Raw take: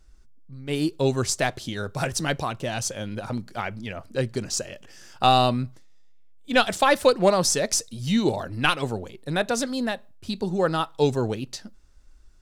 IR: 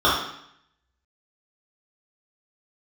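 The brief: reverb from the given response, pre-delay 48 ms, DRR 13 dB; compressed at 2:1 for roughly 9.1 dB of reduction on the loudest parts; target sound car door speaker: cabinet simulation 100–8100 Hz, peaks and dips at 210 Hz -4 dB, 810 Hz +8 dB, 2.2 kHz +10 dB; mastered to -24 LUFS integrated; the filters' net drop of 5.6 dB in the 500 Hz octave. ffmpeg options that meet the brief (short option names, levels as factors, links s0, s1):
-filter_complex "[0:a]equalizer=f=500:t=o:g=-8,acompressor=threshold=0.0224:ratio=2,asplit=2[s0][s1];[1:a]atrim=start_sample=2205,adelay=48[s2];[s1][s2]afir=irnorm=-1:irlink=0,volume=0.0188[s3];[s0][s3]amix=inputs=2:normalize=0,highpass=100,equalizer=f=210:t=q:w=4:g=-4,equalizer=f=810:t=q:w=4:g=8,equalizer=f=2200:t=q:w=4:g=10,lowpass=f=8100:w=0.5412,lowpass=f=8100:w=1.3066,volume=2.37"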